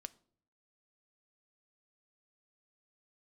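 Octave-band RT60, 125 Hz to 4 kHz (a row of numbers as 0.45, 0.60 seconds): 0.85, 0.75, 0.65, 0.50, 0.35, 0.35 seconds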